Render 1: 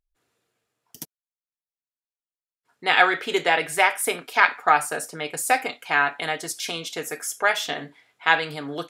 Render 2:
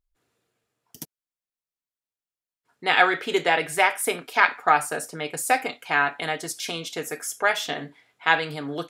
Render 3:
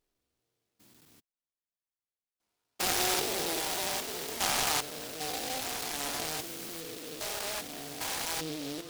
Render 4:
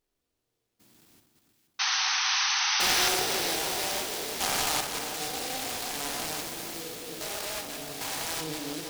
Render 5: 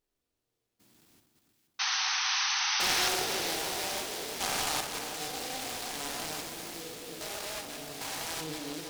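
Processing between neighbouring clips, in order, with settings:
bass shelf 420 Hz +4 dB; trim -1.5 dB
spectrogram pixelated in time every 400 ms; flange 1.9 Hz, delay 2.1 ms, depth 1.9 ms, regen -49%; delay time shaken by noise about 3.7 kHz, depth 0.18 ms
chunks repeated in reverse 116 ms, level -5.5 dB; painted sound noise, 1.79–3.09 s, 740–6300 Hz -27 dBFS; two-band feedback delay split 1.5 kHz, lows 326 ms, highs 473 ms, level -8.5 dB
loudspeaker Doppler distortion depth 0.17 ms; trim -3 dB

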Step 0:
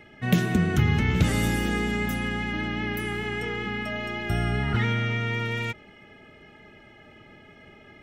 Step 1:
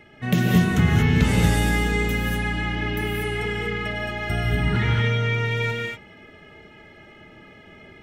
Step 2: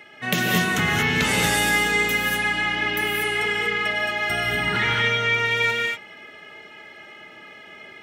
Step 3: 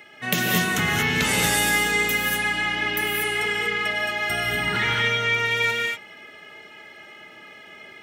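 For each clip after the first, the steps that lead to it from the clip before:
gated-style reverb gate 260 ms rising, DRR -1.5 dB
high-pass 950 Hz 6 dB/octave; trim +7.5 dB
treble shelf 6.6 kHz +6.5 dB; trim -1.5 dB

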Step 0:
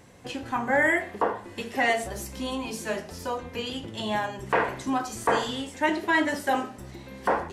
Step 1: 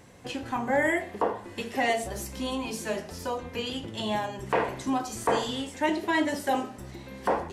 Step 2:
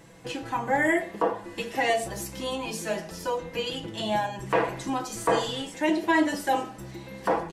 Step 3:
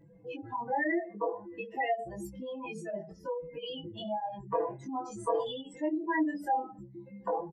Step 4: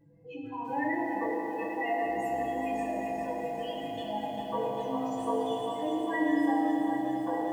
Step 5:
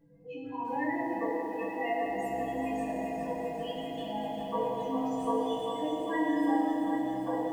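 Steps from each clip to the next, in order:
dynamic bell 1.5 kHz, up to -7 dB, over -38 dBFS, Q 1.4
comb 6.1 ms, depth 67%
spectral contrast enhancement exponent 2.7; doubling 20 ms -2.5 dB; trim -8 dB
reverberation RT60 4.3 s, pre-delay 4 ms, DRR -3 dB; bit-crushed delay 398 ms, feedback 80%, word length 9-bit, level -7.5 dB; trim -5 dB
simulated room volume 590 m³, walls furnished, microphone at 1.7 m; trim -2 dB

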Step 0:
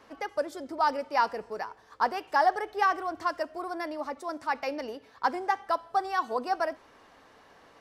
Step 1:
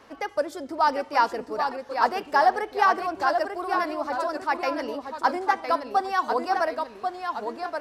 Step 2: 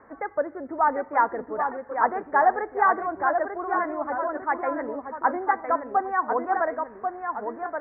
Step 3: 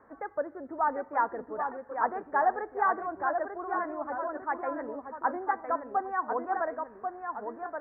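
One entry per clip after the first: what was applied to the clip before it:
ever faster or slower copies 736 ms, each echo -1 st, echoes 2, each echo -6 dB; trim +4 dB
steep low-pass 2 kHz 72 dB/octave
peaking EQ 2.1 kHz -6.5 dB 0.25 oct; trim -6 dB

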